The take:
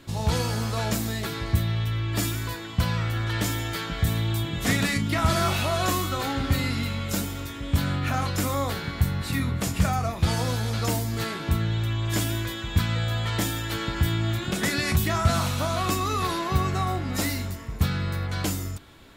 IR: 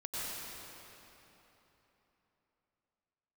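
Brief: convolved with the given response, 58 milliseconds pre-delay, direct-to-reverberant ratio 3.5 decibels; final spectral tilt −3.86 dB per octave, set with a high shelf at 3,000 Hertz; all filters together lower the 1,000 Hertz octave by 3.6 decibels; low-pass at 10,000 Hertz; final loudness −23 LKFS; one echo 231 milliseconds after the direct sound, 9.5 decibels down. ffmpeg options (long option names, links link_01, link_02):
-filter_complex "[0:a]lowpass=10000,equalizer=frequency=1000:width_type=o:gain=-6,highshelf=frequency=3000:gain=6.5,aecho=1:1:231:0.335,asplit=2[link_01][link_02];[1:a]atrim=start_sample=2205,adelay=58[link_03];[link_02][link_03]afir=irnorm=-1:irlink=0,volume=-7dB[link_04];[link_01][link_04]amix=inputs=2:normalize=0,volume=1.5dB"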